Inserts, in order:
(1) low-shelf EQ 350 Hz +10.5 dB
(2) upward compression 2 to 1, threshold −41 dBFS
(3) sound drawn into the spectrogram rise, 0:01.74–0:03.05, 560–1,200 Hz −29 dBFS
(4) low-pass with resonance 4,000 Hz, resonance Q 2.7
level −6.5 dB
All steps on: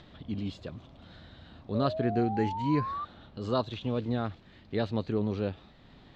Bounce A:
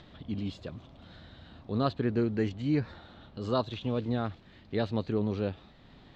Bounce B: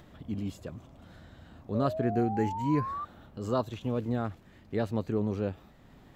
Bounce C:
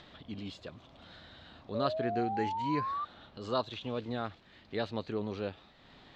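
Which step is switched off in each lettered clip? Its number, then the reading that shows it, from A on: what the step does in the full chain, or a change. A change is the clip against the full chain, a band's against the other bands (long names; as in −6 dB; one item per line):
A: 3, 1 kHz band −5.0 dB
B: 4, 4 kHz band −7.0 dB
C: 1, 125 Hz band −9.0 dB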